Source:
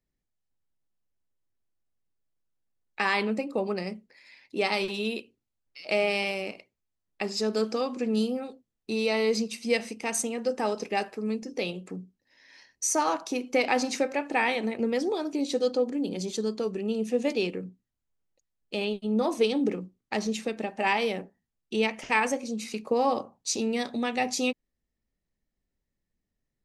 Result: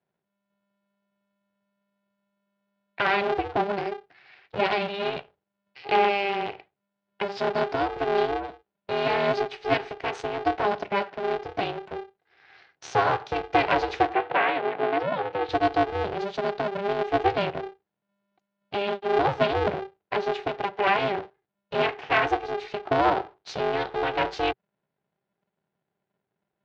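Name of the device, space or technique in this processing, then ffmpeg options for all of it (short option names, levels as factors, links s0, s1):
ring modulator pedal into a guitar cabinet: -filter_complex "[0:a]aeval=exprs='val(0)*sgn(sin(2*PI*200*n/s))':c=same,highpass=94,equalizer=f=130:t=q:w=4:g=4,equalizer=f=240:t=q:w=4:g=-9,equalizer=f=390:t=q:w=4:g=7,equalizer=f=780:t=q:w=4:g=9,equalizer=f=1500:t=q:w=4:g=4,lowpass=f=3800:w=0.5412,lowpass=f=3800:w=1.3066,asettb=1/sr,asplit=3[s0][s1][s2];[s0]atrim=end=14.144[s3];[s1]atrim=start=14.14:end=15.49,asetpts=PTS-STARTPTS,afade=t=in:d=0.004:c=qsin,afade=t=out:st=1.346:d=0.004:c=qsin,acrossover=split=160 3900:gain=0.0794 1 0.126[s4][s5][s6];[s4][s5][s6]amix=inputs=3:normalize=0[s7];[s2]atrim=start=15.486[s8];[s3][s7]acrossfade=d=0.004:c1=hsin:c2=qsin[s9];[s9][s8]acrossfade=d=0.004:c1=qsin:c2=hsin"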